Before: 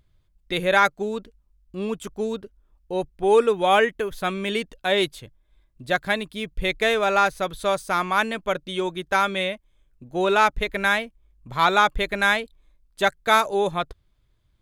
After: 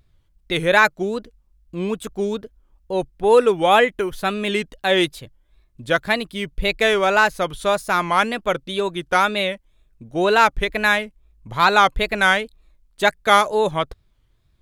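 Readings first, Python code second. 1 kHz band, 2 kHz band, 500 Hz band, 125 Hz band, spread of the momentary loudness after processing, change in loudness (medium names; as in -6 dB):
+3.0 dB, +4.0 dB, +3.5 dB, +4.0 dB, 11 LU, +3.5 dB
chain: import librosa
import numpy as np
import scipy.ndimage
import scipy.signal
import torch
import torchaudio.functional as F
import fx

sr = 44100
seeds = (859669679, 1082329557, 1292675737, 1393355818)

y = fx.wow_flutter(x, sr, seeds[0], rate_hz=2.1, depth_cents=140.0)
y = y * 10.0 ** (3.5 / 20.0)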